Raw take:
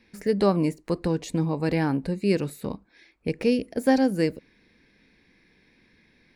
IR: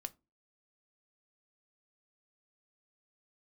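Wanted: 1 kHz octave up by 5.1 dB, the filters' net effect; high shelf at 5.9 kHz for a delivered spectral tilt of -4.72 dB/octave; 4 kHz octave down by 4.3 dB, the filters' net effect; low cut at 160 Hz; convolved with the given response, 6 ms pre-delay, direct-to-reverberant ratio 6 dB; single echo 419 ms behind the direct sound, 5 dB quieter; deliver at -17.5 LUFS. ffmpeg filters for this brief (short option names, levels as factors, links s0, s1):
-filter_complex "[0:a]highpass=160,equalizer=f=1000:t=o:g=7,equalizer=f=4000:t=o:g=-7.5,highshelf=f=5900:g=4,aecho=1:1:419:0.562,asplit=2[s0][s1];[1:a]atrim=start_sample=2205,adelay=6[s2];[s1][s2]afir=irnorm=-1:irlink=0,volume=0.708[s3];[s0][s3]amix=inputs=2:normalize=0,volume=2"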